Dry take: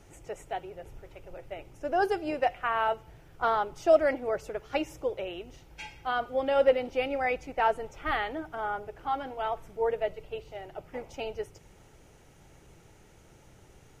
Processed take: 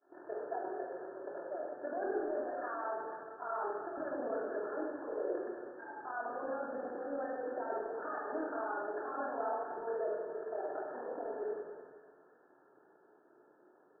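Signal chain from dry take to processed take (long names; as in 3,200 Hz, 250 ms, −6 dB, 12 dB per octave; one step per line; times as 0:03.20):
loose part that buzzes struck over −47 dBFS, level −29 dBFS
high-pass filter 320 Hz 24 dB per octave
downward expander −50 dBFS
compressor whose output falls as the input rises −31 dBFS, ratio −0.5
brickwall limiter −35 dBFS, peak gain reduction 18 dB
amplitude modulation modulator 40 Hz, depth 50%
linear-phase brick-wall low-pass 1,800 Hz
on a send: echo with a time of its own for lows and highs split 1,100 Hz, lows 96 ms, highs 459 ms, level −12 dB
on the sum: rectangular room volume 1,300 cubic metres, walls mixed, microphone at 3 metres
level +3 dB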